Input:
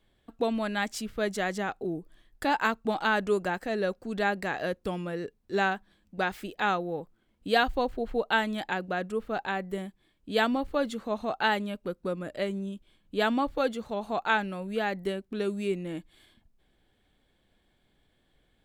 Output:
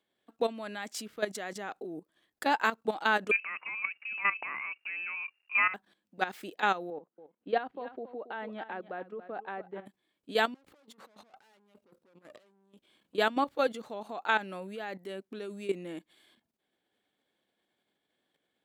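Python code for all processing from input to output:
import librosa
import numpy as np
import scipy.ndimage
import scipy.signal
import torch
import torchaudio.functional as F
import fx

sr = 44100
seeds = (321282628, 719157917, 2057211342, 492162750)

y = fx.chain(x, sr, fx.cvsd(bps=64000),
    fx.freq_invert(carrier_hz=2800), at=(3.31, 5.74))
y = fx.chain(y, sr, fx.highpass(hz=260.0, slope=6),
    fx.spacing_loss(db_at_10k=43),
    fx.echo_single(ms=278, db=-13.0), at=(6.9, 9.86))
y = fx.chain(y, sr, fx.tube_stage(drive_db=39.0, bias=0.8),
    fx.over_compress(threshold_db=-52.0, ratio=-1.0), at=(10.54, 13.15))
y = fx.level_steps(y, sr, step_db=13)
y = scipy.signal.sosfilt(scipy.signal.butter(2, 260.0, 'highpass', fs=sr, output='sos'), y)
y = y * 10.0 ** (1.5 / 20.0)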